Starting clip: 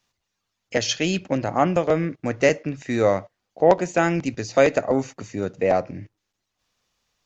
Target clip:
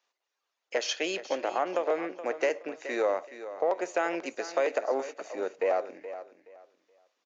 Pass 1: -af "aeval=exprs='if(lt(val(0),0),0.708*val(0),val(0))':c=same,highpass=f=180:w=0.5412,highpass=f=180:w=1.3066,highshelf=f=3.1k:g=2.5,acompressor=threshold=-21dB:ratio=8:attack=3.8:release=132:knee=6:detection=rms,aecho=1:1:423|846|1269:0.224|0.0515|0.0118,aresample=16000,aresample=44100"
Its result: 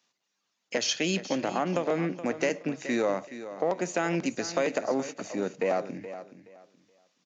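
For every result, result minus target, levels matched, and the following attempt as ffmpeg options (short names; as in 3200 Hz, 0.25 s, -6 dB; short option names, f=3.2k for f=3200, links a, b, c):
250 Hz band +7.5 dB; 8000 Hz band +5.5 dB
-af "aeval=exprs='if(lt(val(0),0),0.708*val(0),val(0))':c=same,highpass=f=400:w=0.5412,highpass=f=400:w=1.3066,highshelf=f=3.1k:g=2.5,acompressor=threshold=-21dB:ratio=8:attack=3.8:release=132:knee=6:detection=rms,aecho=1:1:423|846|1269:0.224|0.0515|0.0118,aresample=16000,aresample=44100"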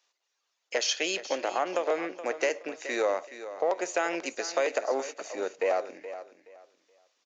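8000 Hz band +6.5 dB
-af "aeval=exprs='if(lt(val(0),0),0.708*val(0),val(0))':c=same,highpass=f=400:w=0.5412,highpass=f=400:w=1.3066,highshelf=f=3.1k:g=-8,acompressor=threshold=-21dB:ratio=8:attack=3.8:release=132:knee=6:detection=rms,aecho=1:1:423|846|1269:0.224|0.0515|0.0118,aresample=16000,aresample=44100"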